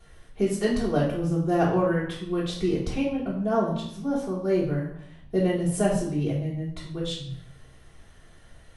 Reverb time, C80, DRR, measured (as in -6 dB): 0.70 s, 8.0 dB, -10.0 dB